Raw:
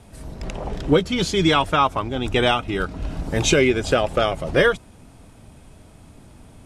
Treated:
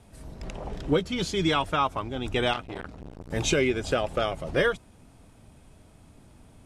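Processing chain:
0:02.53–0:03.31: saturating transformer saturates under 1,400 Hz
level −7 dB

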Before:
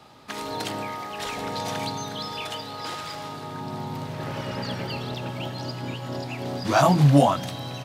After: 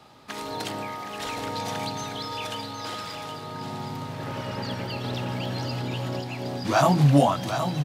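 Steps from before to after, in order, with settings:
single-tap delay 768 ms −8 dB
0:05.04–0:06.20: envelope flattener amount 100%
level −1.5 dB

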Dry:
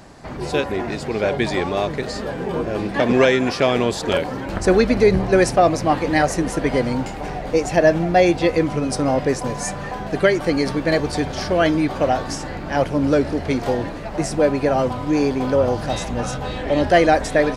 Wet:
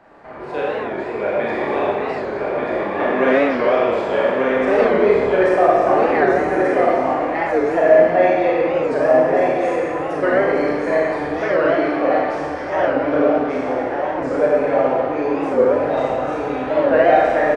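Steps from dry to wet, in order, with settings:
three-way crossover with the lows and the highs turned down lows −15 dB, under 330 Hz, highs −24 dB, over 2,400 Hz
on a send: single-tap delay 1,187 ms −3.5 dB
on the sum: four-comb reverb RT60 1.7 s, combs from 27 ms, DRR −6 dB
wow of a warped record 45 rpm, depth 160 cents
level −4 dB

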